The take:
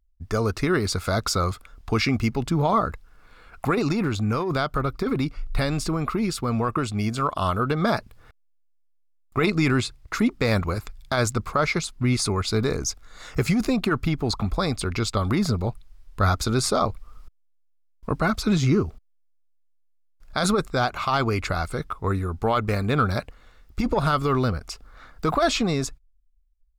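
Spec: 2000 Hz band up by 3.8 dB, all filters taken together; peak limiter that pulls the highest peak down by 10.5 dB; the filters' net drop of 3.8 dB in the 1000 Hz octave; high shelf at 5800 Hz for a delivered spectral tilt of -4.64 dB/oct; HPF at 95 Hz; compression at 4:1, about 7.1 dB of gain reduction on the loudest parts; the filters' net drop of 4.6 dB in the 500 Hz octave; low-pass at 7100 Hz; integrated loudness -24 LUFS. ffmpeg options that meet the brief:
-af "highpass=95,lowpass=7.1k,equalizer=f=500:t=o:g=-4.5,equalizer=f=1k:t=o:g=-7.5,equalizer=f=2k:t=o:g=7,highshelf=f=5.8k:g=7,acompressor=threshold=-25dB:ratio=4,volume=8dB,alimiter=limit=-14dB:level=0:latency=1"

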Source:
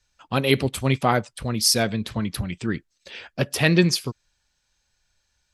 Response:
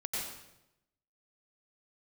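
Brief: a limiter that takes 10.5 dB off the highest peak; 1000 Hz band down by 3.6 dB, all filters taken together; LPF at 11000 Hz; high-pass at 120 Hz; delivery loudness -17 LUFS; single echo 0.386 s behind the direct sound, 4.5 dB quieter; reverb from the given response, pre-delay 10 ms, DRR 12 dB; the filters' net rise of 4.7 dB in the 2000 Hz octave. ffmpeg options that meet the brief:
-filter_complex "[0:a]highpass=120,lowpass=11k,equalizer=f=1k:t=o:g=-7.5,equalizer=f=2k:t=o:g=7.5,alimiter=limit=-11.5dB:level=0:latency=1,aecho=1:1:386:0.596,asplit=2[a][b];[1:a]atrim=start_sample=2205,adelay=10[c];[b][c]afir=irnorm=-1:irlink=0,volume=-15.5dB[d];[a][d]amix=inputs=2:normalize=0,volume=7.5dB"

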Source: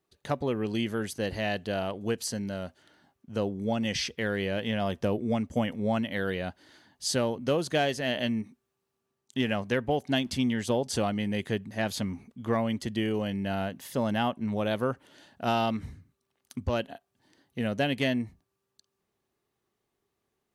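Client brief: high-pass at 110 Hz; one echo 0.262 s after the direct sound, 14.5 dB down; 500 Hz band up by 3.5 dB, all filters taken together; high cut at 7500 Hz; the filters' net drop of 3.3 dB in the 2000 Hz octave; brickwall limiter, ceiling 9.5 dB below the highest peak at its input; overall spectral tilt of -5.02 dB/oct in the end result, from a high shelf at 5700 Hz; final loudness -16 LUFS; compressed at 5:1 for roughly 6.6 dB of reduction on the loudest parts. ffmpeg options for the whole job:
-af "highpass=110,lowpass=7.5k,equalizer=f=500:t=o:g=4.5,equalizer=f=2k:t=o:g=-3.5,highshelf=f=5.7k:g=-8.5,acompressor=threshold=-27dB:ratio=5,alimiter=level_in=1.5dB:limit=-24dB:level=0:latency=1,volume=-1.5dB,aecho=1:1:262:0.188,volume=20.5dB"

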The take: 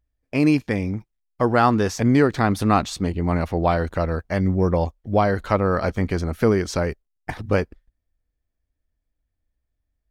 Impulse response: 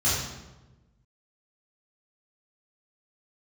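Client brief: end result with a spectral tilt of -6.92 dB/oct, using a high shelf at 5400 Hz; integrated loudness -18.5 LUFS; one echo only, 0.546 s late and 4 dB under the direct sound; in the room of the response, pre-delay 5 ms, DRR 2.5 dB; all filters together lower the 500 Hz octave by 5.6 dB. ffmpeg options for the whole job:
-filter_complex "[0:a]equalizer=f=500:t=o:g=-7,highshelf=f=5.4k:g=-3.5,aecho=1:1:546:0.631,asplit=2[a][b];[1:a]atrim=start_sample=2205,adelay=5[c];[b][c]afir=irnorm=-1:irlink=0,volume=-15.5dB[d];[a][d]amix=inputs=2:normalize=0,volume=-2dB"

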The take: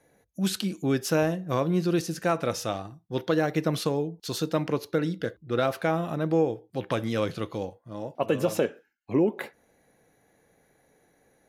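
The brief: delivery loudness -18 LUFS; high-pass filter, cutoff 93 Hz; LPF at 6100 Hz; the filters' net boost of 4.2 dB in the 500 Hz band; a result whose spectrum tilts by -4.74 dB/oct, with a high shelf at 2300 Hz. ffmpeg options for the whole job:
-af "highpass=93,lowpass=6.1k,equalizer=f=500:t=o:g=4.5,highshelf=f=2.3k:g=7.5,volume=7dB"

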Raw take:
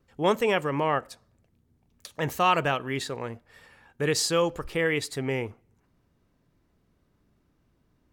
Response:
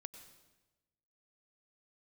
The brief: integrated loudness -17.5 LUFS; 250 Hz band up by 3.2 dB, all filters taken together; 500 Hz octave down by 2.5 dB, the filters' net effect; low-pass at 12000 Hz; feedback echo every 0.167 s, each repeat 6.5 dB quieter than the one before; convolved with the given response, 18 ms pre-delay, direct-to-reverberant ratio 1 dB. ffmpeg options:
-filter_complex "[0:a]lowpass=12k,equalizer=f=250:t=o:g=6,equalizer=f=500:t=o:g=-4.5,aecho=1:1:167|334|501|668|835|1002:0.473|0.222|0.105|0.0491|0.0231|0.0109,asplit=2[a][b];[1:a]atrim=start_sample=2205,adelay=18[c];[b][c]afir=irnorm=-1:irlink=0,volume=4dB[d];[a][d]amix=inputs=2:normalize=0,volume=6.5dB"

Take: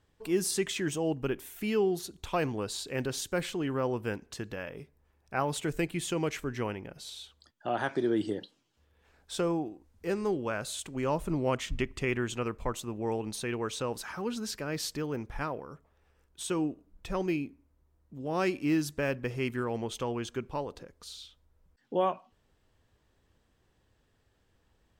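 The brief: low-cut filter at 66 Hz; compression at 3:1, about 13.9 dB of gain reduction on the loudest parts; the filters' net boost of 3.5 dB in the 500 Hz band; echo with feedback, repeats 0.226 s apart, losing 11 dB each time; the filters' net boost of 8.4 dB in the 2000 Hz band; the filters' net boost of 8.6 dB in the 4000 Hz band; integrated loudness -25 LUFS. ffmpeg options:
-af "highpass=66,equalizer=f=500:t=o:g=4,equalizer=f=2k:t=o:g=8.5,equalizer=f=4k:t=o:g=8,acompressor=threshold=-40dB:ratio=3,aecho=1:1:226|452|678:0.282|0.0789|0.0221,volume=15dB"

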